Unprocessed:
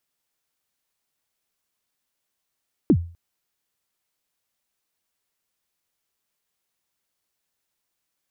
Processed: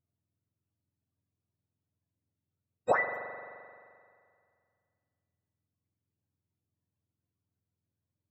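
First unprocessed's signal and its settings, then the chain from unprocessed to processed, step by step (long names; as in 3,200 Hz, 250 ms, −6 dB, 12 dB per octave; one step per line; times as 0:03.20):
synth kick length 0.25 s, from 370 Hz, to 85 Hz, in 66 ms, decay 0.39 s, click off, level −9 dB
frequency axis turned over on the octave scale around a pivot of 410 Hz
spring reverb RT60 2.2 s, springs 43 ms, chirp 30 ms, DRR 7 dB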